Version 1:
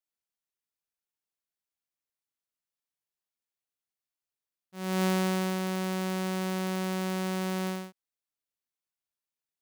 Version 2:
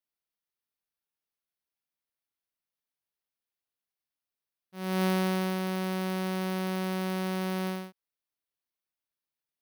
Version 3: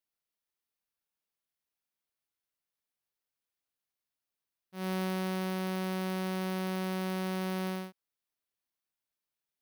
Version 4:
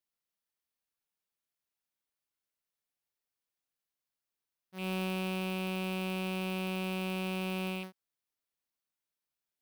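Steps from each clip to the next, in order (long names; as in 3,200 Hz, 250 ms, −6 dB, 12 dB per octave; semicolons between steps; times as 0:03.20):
parametric band 7,300 Hz −13.5 dB 0.32 octaves
downward compressor, threshold −31 dBFS, peak gain reduction 7 dB
loose part that buzzes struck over −40 dBFS, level −31 dBFS; level −1.5 dB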